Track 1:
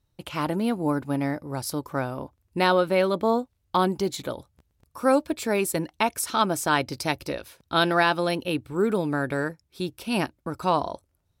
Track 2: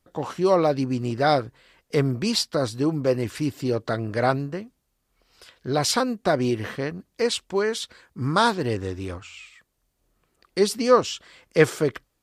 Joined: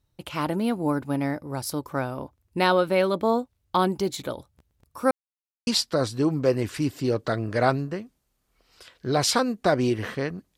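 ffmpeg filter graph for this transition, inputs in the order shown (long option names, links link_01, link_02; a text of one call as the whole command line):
ffmpeg -i cue0.wav -i cue1.wav -filter_complex "[0:a]apad=whole_dur=10.57,atrim=end=10.57,asplit=2[link_01][link_02];[link_01]atrim=end=5.11,asetpts=PTS-STARTPTS,afade=type=out:start_time=5.106:duration=0.004:curve=hsin[link_03];[link_02]atrim=start=5.11:end=5.67,asetpts=PTS-STARTPTS,volume=0[link_04];[1:a]atrim=start=2.28:end=7.18,asetpts=PTS-STARTPTS,afade=type=in:duration=0.004:curve=hsin[link_05];[link_03][link_04][link_05]concat=n=3:v=0:a=1" out.wav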